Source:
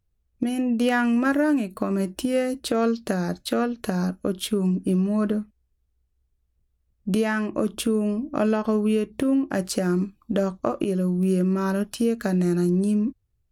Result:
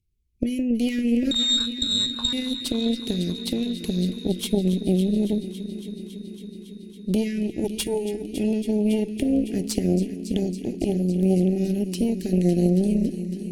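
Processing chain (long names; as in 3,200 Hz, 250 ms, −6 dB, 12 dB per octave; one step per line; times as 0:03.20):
Chebyshev band-stop filter 410–2,100 Hz, order 4
0:01.31–0:02.33: voice inversion scrambler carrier 4,000 Hz
0:07.64–0:08.34: comb filter 2.1 ms, depth 91%
echo machine with several playback heads 278 ms, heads first and second, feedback 73%, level −15 dB
harmonic generator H 2 −7 dB, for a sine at −11.5 dBFS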